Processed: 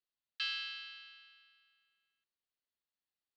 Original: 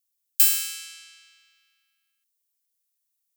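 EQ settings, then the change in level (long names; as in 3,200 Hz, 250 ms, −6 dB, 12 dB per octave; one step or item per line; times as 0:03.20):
Chebyshev low-pass filter 4,500 Hz, order 5
high-shelf EQ 3,000 Hz −10 dB
notch filter 2,300 Hz, Q 9
+1.5 dB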